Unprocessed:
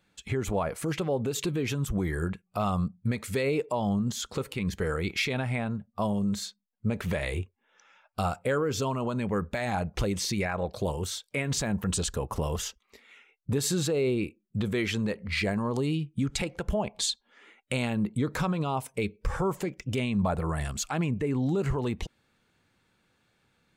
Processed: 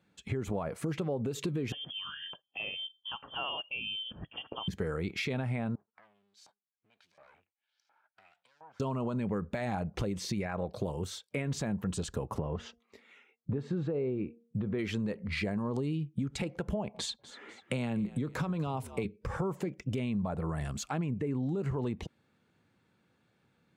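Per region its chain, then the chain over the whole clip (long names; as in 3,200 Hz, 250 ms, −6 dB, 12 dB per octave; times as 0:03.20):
0:01.72–0:04.68: tilt shelving filter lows −5.5 dB, about 910 Hz + phaser with its sweep stopped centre 320 Hz, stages 6 + voice inversion scrambler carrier 3,300 Hz
0:05.75–0:08.80: lower of the sound and its delayed copy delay 1.3 ms + downward compressor 12 to 1, threshold −41 dBFS + auto-filter band-pass saw up 1.4 Hz 860–6,000 Hz
0:12.36–0:14.79: treble cut that deepens with the level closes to 1,800 Hz, closed at −26 dBFS + high-pass filter 55 Hz + hum removal 233.7 Hz, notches 3
0:16.94–0:19.05: echo with shifted repeats 245 ms, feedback 32%, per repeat −65 Hz, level −18 dB + multiband upward and downward compressor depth 40%
whole clip: high-pass filter 120 Hz 12 dB per octave; spectral tilt −2 dB per octave; downward compressor, threshold −27 dBFS; level −2.5 dB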